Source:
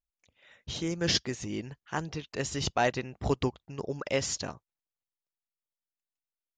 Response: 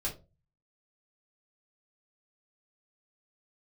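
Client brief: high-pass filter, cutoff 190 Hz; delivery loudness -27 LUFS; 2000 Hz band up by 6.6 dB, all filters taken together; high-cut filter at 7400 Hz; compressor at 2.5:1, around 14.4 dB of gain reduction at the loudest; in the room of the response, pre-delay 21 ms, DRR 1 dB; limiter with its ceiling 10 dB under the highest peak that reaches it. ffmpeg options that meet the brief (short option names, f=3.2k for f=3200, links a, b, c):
-filter_complex "[0:a]highpass=190,lowpass=7.4k,equalizer=f=2k:t=o:g=8,acompressor=threshold=-43dB:ratio=2.5,alimiter=level_in=7.5dB:limit=-24dB:level=0:latency=1,volume=-7.5dB,asplit=2[a][b];[1:a]atrim=start_sample=2205,adelay=21[c];[b][c]afir=irnorm=-1:irlink=0,volume=-4dB[d];[a][d]amix=inputs=2:normalize=0,volume=15dB"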